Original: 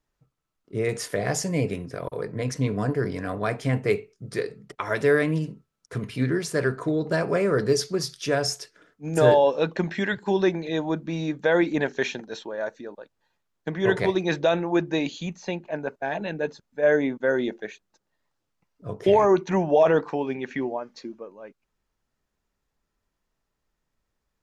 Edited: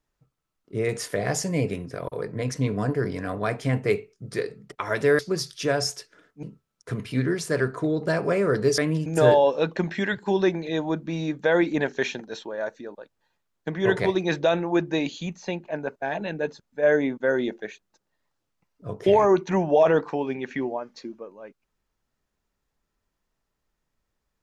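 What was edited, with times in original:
0:05.19–0:05.47: swap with 0:07.82–0:09.06

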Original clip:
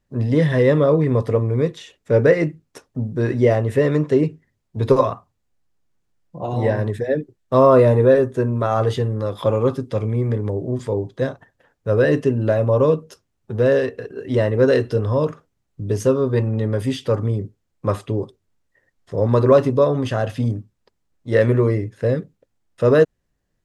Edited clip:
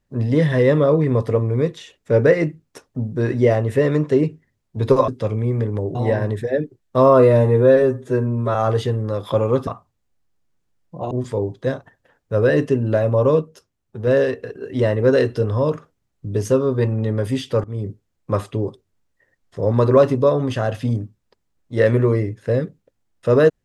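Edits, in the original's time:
0:05.08–0:06.52: swap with 0:09.79–0:10.66
0:07.77–0:08.67: time-stretch 1.5×
0:12.97–0:13.62: clip gain −4 dB
0:17.19–0:17.44: fade in, from −20 dB

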